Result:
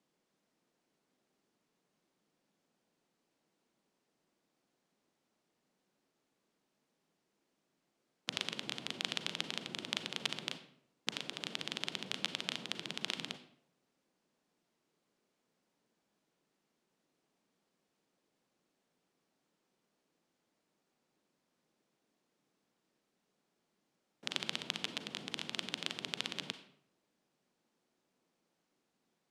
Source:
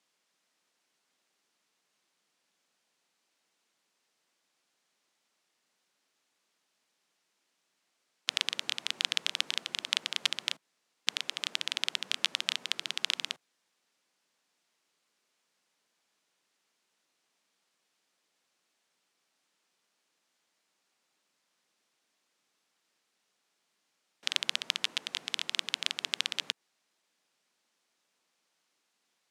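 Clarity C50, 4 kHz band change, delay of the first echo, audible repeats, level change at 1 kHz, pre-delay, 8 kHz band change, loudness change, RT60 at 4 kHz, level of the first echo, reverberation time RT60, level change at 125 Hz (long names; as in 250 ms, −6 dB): 11.5 dB, −8.0 dB, no echo audible, no echo audible, −2.5 dB, 35 ms, −8.5 dB, −7.5 dB, 0.45 s, no echo audible, 0.70 s, can't be measured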